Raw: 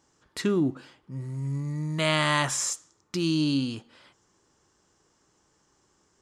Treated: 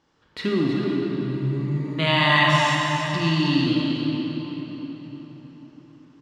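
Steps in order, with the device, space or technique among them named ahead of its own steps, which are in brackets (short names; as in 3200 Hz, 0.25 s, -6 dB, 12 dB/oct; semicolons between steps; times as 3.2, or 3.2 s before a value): resonant high shelf 5400 Hz -14 dB, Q 1.5; cave (echo 0.318 s -8.5 dB; reverb RT60 4.5 s, pre-delay 22 ms, DRR -3.5 dB); 2.07–3.67 comb 1.1 ms, depth 54%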